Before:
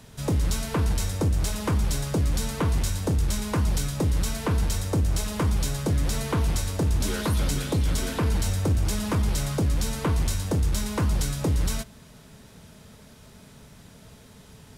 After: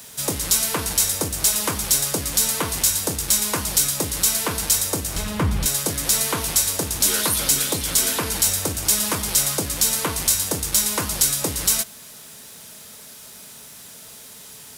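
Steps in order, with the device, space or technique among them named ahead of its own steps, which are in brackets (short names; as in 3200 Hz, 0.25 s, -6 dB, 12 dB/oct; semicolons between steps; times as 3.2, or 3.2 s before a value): turntable without a phono preamp (RIAA curve recording; white noise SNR 32 dB); 5.16–5.66 tone controls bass +12 dB, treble -14 dB; gain +4.5 dB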